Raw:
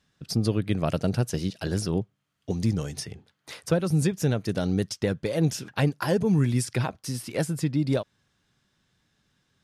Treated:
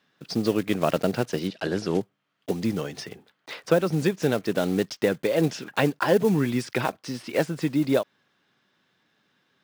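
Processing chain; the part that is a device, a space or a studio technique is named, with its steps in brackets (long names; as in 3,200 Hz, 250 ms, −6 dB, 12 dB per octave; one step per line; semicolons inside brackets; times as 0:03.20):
early digital voice recorder (band-pass filter 260–3,700 Hz; one scale factor per block 5 bits)
0:01.47–0:02.01: Bessel low-pass filter 7,100 Hz, order 2
level +5.5 dB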